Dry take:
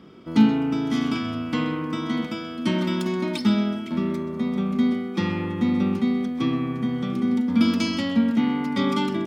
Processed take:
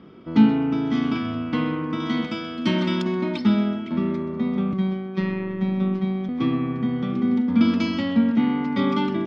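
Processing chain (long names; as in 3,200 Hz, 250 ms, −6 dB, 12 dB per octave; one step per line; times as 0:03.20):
0:02.00–0:03.02: high-shelf EQ 3,200 Hz +11 dB
0:04.73–0:06.29: phases set to zero 189 Hz
high-frequency loss of the air 190 metres
level +1.5 dB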